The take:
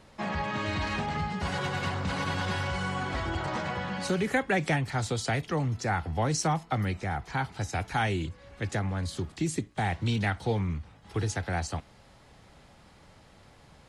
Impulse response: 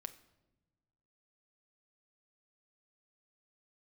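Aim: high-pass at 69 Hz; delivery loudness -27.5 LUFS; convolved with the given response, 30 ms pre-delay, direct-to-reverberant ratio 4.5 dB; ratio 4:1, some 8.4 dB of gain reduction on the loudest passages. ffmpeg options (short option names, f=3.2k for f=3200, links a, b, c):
-filter_complex "[0:a]highpass=69,acompressor=threshold=-33dB:ratio=4,asplit=2[a][b];[1:a]atrim=start_sample=2205,adelay=30[c];[b][c]afir=irnorm=-1:irlink=0,volume=-0.5dB[d];[a][d]amix=inputs=2:normalize=0,volume=8dB"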